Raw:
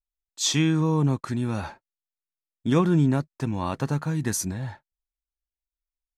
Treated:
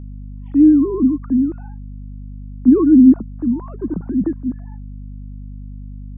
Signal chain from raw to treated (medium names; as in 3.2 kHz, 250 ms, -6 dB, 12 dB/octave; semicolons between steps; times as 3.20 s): formants replaced by sine waves; low-pass 1.3 kHz 24 dB/octave; resonant low shelf 460 Hz +13 dB, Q 1.5; hum 50 Hz, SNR 15 dB; trim -5.5 dB